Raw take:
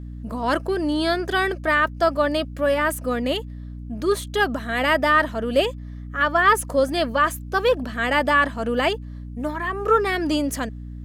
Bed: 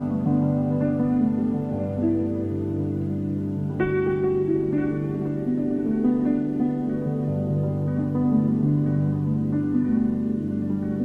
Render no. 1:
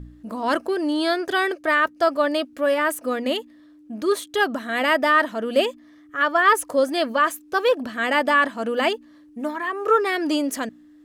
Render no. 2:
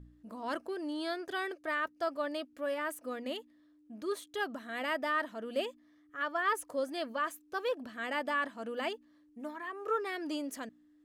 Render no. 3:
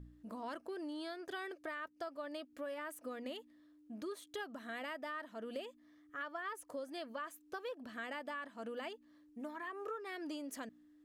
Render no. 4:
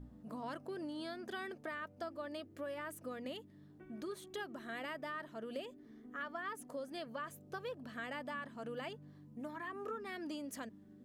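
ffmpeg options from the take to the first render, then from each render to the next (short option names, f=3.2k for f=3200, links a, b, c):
-af "bandreject=f=60:t=h:w=4,bandreject=f=120:t=h:w=4,bandreject=f=180:t=h:w=4,bandreject=f=240:t=h:w=4"
-af "volume=-14.5dB"
-af "acompressor=threshold=-41dB:ratio=6"
-filter_complex "[1:a]volume=-34.5dB[a];[0:a][a]amix=inputs=2:normalize=0"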